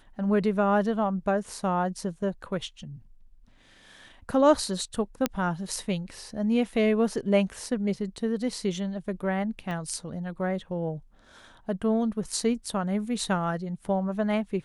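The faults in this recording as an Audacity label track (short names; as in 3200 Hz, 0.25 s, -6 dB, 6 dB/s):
5.260000	5.260000	pop -9 dBFS
9.710000	9.710000	pop -24 dBFS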